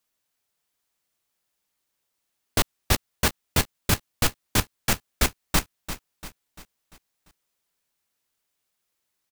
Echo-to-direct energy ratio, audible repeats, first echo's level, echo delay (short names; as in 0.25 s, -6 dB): -11.0 dB, 4, -12.0 dB, 0.344 s